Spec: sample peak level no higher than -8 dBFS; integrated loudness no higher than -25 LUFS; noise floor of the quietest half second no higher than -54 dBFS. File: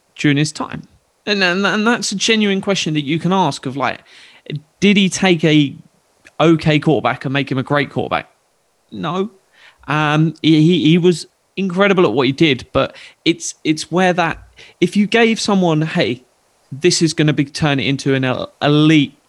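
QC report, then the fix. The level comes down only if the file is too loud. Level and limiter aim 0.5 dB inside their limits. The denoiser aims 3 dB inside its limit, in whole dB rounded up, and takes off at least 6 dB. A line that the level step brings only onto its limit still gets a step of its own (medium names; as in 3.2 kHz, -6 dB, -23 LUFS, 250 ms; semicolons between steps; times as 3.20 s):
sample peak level -2.0 dBFS: fail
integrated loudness -15.5 LUFS: fail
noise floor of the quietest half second -61 dBFS: pass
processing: trim -10 dB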